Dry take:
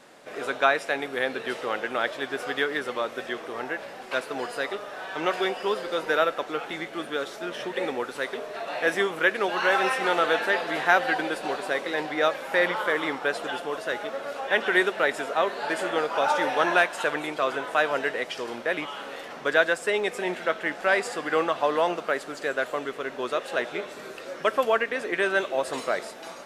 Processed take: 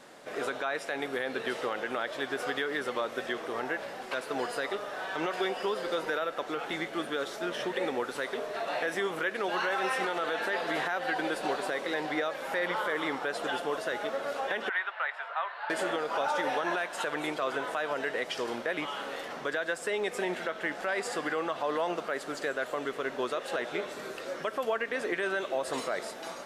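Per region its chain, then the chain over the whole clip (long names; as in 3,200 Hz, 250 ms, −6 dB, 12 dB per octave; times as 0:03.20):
0:14.69–0:15.70: high-pass filter 880 Hz 24 dB per octave + high-frequency loss of the air 430 metres
whole clip: downward compressor 2 to 1, threshold −27 dBFS; parametric band 2,500 Hz −2.5 dB 0.28 octaves; brickwall limiter −20.5 dBFS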